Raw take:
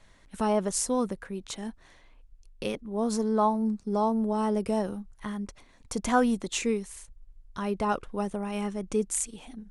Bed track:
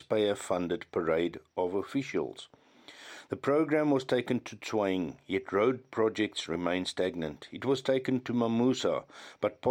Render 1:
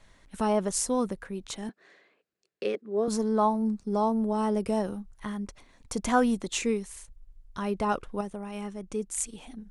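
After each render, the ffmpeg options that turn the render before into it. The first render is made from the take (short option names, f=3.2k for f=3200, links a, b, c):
-filter_complex "[0:a]asettb=1/sr,asplit=3[a][b][c];[a]atrim=end=1.694[d];[b]atrim=start=1.69:end=3.08,asetpts=PTS-STARTPTS,afade=t=in:d=0.004:c=qsin,afade=t=out:st=1.386:d=0.004:c=qsin,highpass=f=210:w=0.5412,highpass=f=210:w=1.3066,equalizer=f=260:t=q:w=4:g=-8,equalizer=f=410:t=q:w=4:g=8,equalizer=f=920:t=q:w=4:g=-10,equalizer=f=1.7k:t=q:w=4:g=4,equalizer=f=3.3k:t=q:w=4:g=-5,equalizer=f=5.9k:t=q:w=4:g=-9,lowpass=f=7k:w=0.5412,lowpass=f=7k:w=1.3066[e];[c]atrim=start=3.076[f];[d][e]acrossfade=d=0.004:c1=hsin:c2=qsin[g];[g][f]acrossfade=d=0.004:c1=qsin:c2=hsin,asplit=3[h][i][j];[h]atrim=end=8.212[k];[i]atrim=start=8.208:end=9.182,asetpts=PTS-STARTPTS,volume=-5dB[l];[j]atrim=start=9.178[m];[k][l]acrossfade=d=0.004:c1=hsin:c2=hsin[n];[n][m]acrossfade=d=0.004:c1=hsin:c2=hsin"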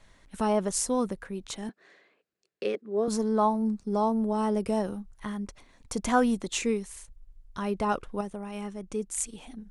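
-af anull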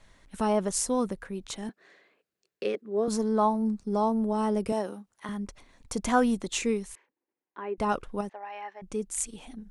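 -filter_complex "[0:a]asettb=1/sr,asplit=3[a][b][c];[a]atrim=end=4.724[d];[b]atrim=start=4.72:end=5.29,asetpts=PTS-STARTPTS,afade=t=in:d=0.004:c=qsin,afade=t=out:st=0.566:d=0.004:c=qsin,highpass=280[e];[c]atrim=start=5.286[f];[d][e]acrossfade=d=0.004:c1=hsin:c2=qsin[g];[g][f]acrossfade=d=0.004:c1=qsin:c2=hsin,asettb=1/sr,asplit=3[h][i][j];[h]atrim=end=6.954[k];[i]atrim=start=6.95:end=7.78,asetpts=PTS-STARTPTS,afade=t=in:d=0.004:c=qsin,afade=t=out:st=0.826:d=0.004:c=qsin,highpass=f=320:w=0.5412,highpass=f=320:w=1.3066,equalizer=f=330:t=q:w=4:g=3,equalizer=f=640:t=q:w=4:g=-8,equalizer=f=1.3k:t=q:w=4:g=-9,lowpass=f=2.2k:w=0.5412,lowpass=f=2.2k:w=1.3066[l];[j]atrim=start=7.776[m];[k][l]acrossfade=d=0.004:c1=hsin:c2=qsin[n];[n][m]acrossfade=d=0.004:c1=qsin:c2=hsin,asettb=1/sr,asplit=3[o][p][q];[o]atrim=end=8.294[r];[p]atrim=start=8.29:end=8.82,asetpts=PTS-STARTPTS,afade=t=in:d=0.004:c=qsin,afade=t=out:st=0.526:d=0.004:c=qsin,highpass=f=480:w=0.5412,highpass=f=480:w=1.3066,equalizer=f=480:t=q:w=4:g=-8,equalizer=f=830:t=q:w=4:g=8,equalizer=f=1.3k:t=q:w=4:g=-6,equalizer=f=1.8k:t=q:w=4:g=10,equalizer=f=3.4k:t=q:w=4:g=-8,lowpass=f=3.9k:w=0.5412,lowpass=f=3.9k:w=1.3066[s];[q]atrim=start=8.816[t];[r][s]acrossfade=d=0.004:c1=hsin:c2=qsin[u];[u][t]acrossfade=d=0.004:c1=qsin:c2=hsin"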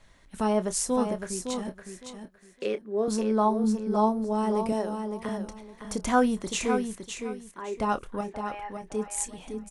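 -filter_complex "[0:a]asplit=2[a][b];[b]adelay=28,volume=-12.5dB[c];[a][c]amix=inputs=2:normalize=0,aecho=1:1:561|1122|1683:0.447|0.0983|0.0216"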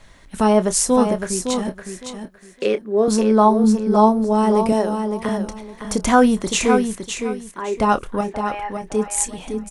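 -af "volume=10dB,alimiter=limit=-2dB:level=0:latency=1"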